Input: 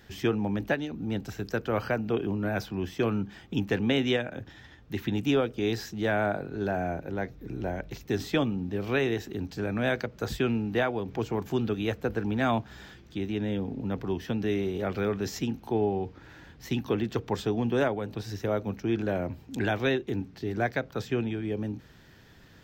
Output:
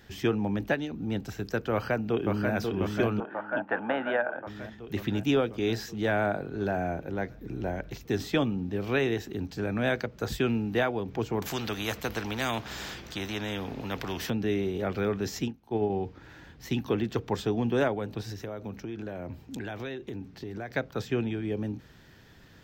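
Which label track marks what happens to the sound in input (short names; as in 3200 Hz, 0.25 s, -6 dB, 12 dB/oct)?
1.720000	2.530000	echo throw 0.54 s, feedback 70%, level -4 dB
3.200000	4.470000	speaker cabinet 380–2200 Hz, peaks and dips at 410 Hz -9 dB, 610 Hz +8 dB, 870 Hz +10 dB, 1500 Hz +10 dB, 2200 Hz -6 dB
10.320000	10.890000	high shelf 6500 Hz +4.5 dB
11.420000	14.300000	spectral compressor 2:1
15.480000	15.900000	upward expander 2.5:1, over -34 dBFS
18.310000	20.710000	compressor, threshold -33 dBFS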